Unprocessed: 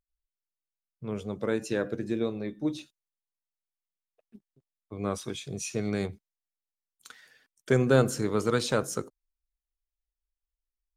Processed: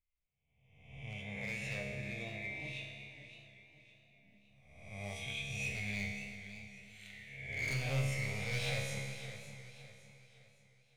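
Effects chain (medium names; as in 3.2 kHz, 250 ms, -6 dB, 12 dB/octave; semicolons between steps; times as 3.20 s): reverse spectral sustain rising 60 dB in 0.95 s; FFT filter 110 Hz 0 dB, 360 Hz -27 dB, 720 Hz -3 dB, 1.4 kHz -29 dB, 2.1 kHz +12 dB, 3.1 kHz +2 dB, 4.5 kHz -12 dB; overload inside the chain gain 28.5 dB; feedback comb 68 Hz, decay 1.8 s, harmonics all, mix 90%; modulated delay 561 ms, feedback 41%, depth 88 cents, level -12 dB; trim +10.5 dB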